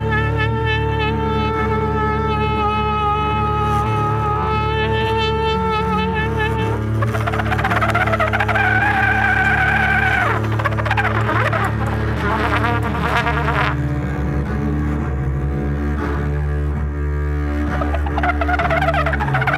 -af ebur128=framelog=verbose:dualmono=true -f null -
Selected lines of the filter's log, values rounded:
Integrated loudness:
  I:         -15.0 LUFS
  Threshold: -25.0 LUFS
Loudness range:
  LRA:         5.1 LU
  Threshold: -35.0 LUFS
  LRA low:   -17.8 LUFS
  LRA high:  -12.7 LUFS